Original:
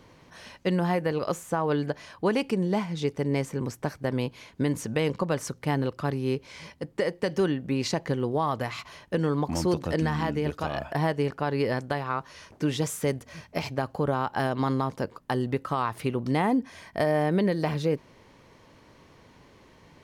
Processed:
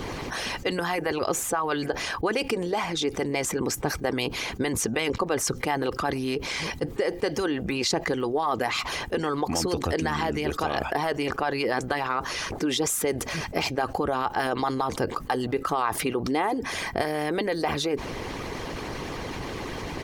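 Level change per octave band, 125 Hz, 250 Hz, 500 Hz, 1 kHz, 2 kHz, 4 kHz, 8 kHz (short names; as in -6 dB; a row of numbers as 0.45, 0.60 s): -5.5, -1.0, +1.0, +3.5, +5.5, +8.0, +10.5 dB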